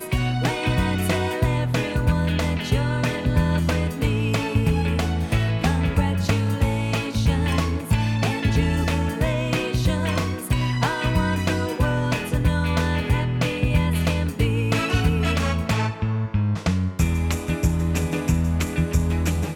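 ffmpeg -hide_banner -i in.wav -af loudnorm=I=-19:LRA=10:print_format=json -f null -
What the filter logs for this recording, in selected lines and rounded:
"input_i" : "-22.7",
"input_tp" : "-6.4",
"input_lra" : "0.8",
"input_thresh" : "-32.7",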